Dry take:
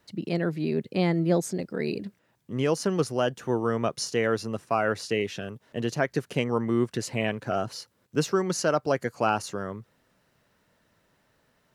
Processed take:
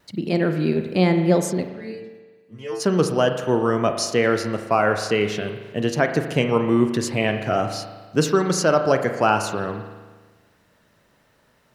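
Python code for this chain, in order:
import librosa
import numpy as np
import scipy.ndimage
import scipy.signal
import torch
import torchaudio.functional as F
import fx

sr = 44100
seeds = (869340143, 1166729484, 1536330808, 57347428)

y = fx.stiff_resonator(x, sr, f0_hz=110.0, decay_s=0.56, stiffness=0.002, at=(1.67, 2.79), fade=0.02)
y = fx.vibrato(y, sr, rate_hz=1.0, depth_cents=14.0)
y = fx.rev_spring(y, sr, rt60_s=1.4, pass_ms=(38,), chirp_ms=20, drr_db=6.5)
y = y * librosa.db_to_amplitude(6.0)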